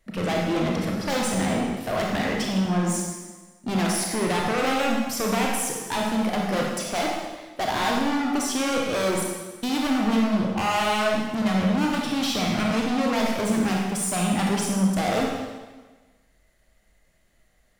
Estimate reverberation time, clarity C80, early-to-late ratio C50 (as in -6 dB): 1.3 s, 3.0 dB, 0.5 dB